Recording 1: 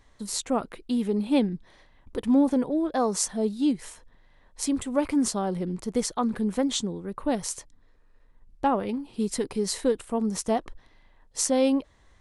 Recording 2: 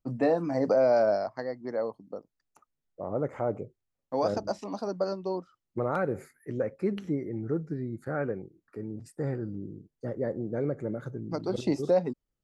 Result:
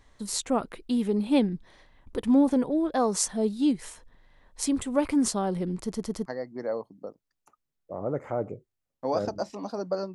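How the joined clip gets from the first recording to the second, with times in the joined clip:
recording 1
5.82 s: stutter in place 0.11 s, 4 plays
6.26 s: go over to recording 2 from 1.35 s

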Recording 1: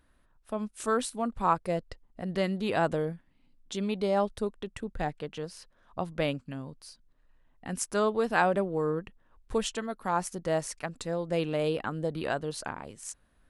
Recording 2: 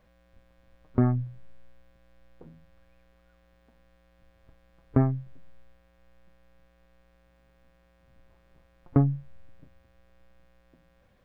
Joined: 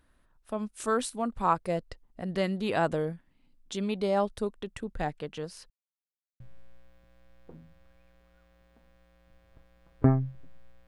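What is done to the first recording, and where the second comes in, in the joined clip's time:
recording 1
5.70–6.40 s: mute
6.40 s: go over to recording 2 from 1.32 s

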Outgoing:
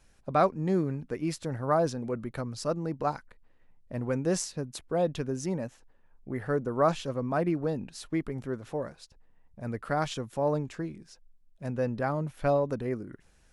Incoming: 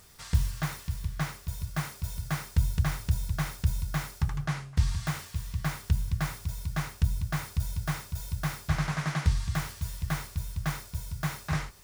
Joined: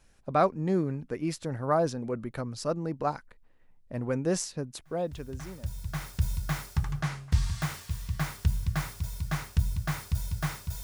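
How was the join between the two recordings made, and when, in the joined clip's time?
outgoing
5.47 s: go over to incoming from 2.92 s, crossfade 1.68 s quadratic

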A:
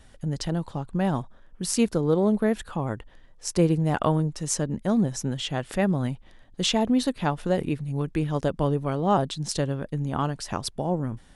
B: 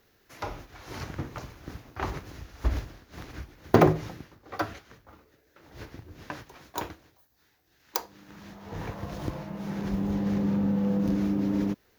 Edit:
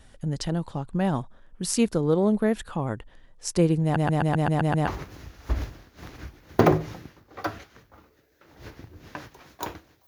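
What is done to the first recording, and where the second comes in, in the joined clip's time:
A
3.83 s: stutter in place 0.13 s, 8 plays
4.87 s: go over to B from 2.02 s

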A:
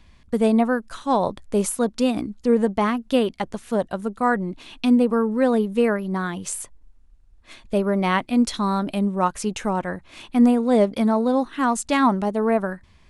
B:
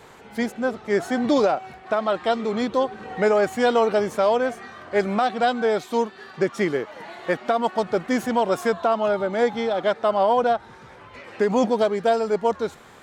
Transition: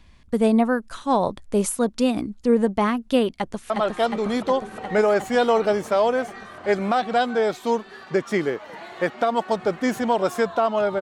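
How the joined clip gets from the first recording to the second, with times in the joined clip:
A
3.32–3.70 s: echo throw 360 ms, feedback 80%, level -3 dB
3.70 s: go over to B from 1.97 s

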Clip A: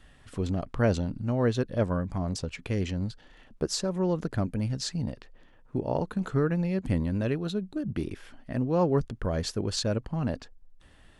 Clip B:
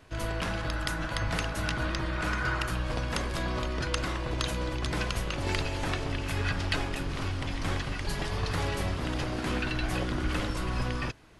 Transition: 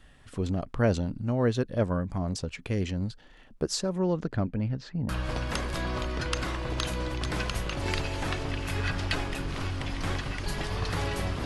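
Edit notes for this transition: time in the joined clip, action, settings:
clip A
3.97–5.09 s: low-pass 9.1 kHz -> 1.4 kHz
5.09 s: go over to clip B from 2.70 s

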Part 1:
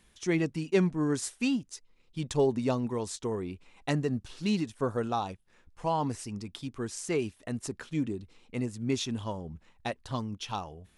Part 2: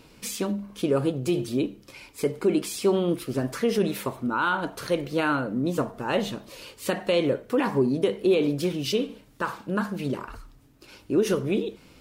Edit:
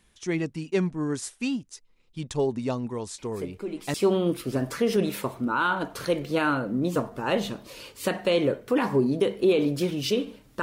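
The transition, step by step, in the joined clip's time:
part 1
3.18 s: add part 2 from 2.00 s 0.76 s -11 dB
3.94 s: go over to part 2 from 2.76 s

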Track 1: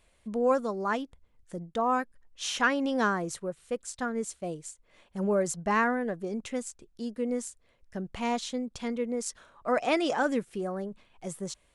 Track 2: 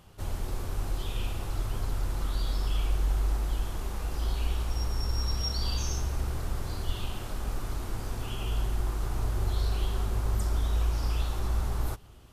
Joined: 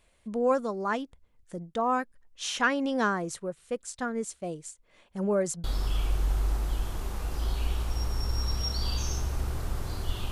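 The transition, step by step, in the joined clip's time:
track 1
5.64 s: go over to track 2 from 2.44 s

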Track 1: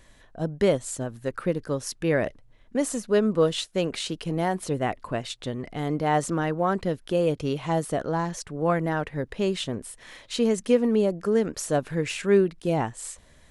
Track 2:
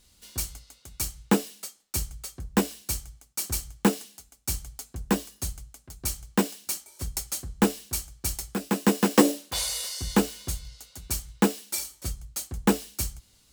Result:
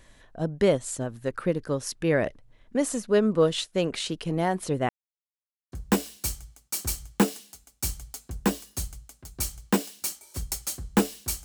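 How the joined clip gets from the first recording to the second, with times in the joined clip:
track 1
4.89–5.72 s: mute
5.72 s: go over to track 2 from 2.37 s

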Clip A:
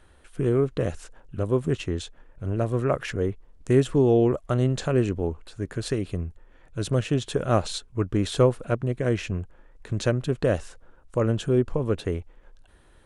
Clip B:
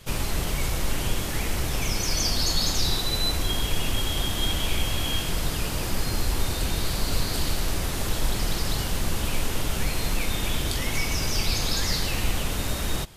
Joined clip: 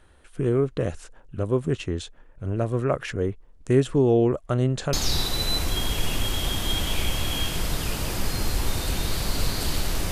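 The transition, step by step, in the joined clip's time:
clip A
4.93 s: go over to clip B from 2.66 s

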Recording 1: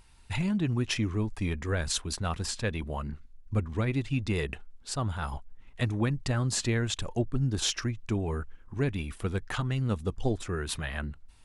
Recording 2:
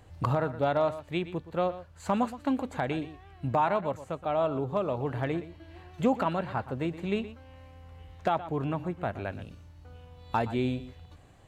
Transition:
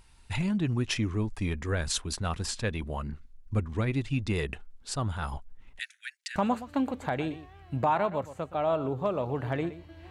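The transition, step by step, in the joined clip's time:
recording 1
5.79–6.36 s: steep high-pass 1.5 kHz 96 dB/octave
6.36 s: go over to recording 2 from 2.07 s

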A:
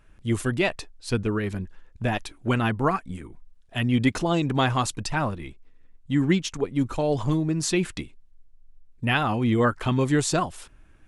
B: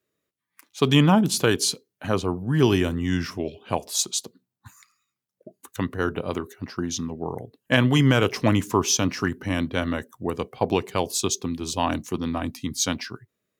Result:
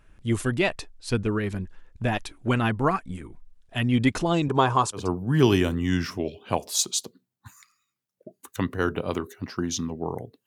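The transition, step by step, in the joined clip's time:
A
4.48–5.10 s: cabinet simulation 110–10000 Hz, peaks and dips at 240 Hz -5 dB, 420 Hz +8 dB, 1 kHz +9 dB, 2 kHz -9 dB, 2.8 kHz -4 dB, 4 kHz -5 dB
5.01 s: go over to B from 2.21 s, crossfade 0.18 s

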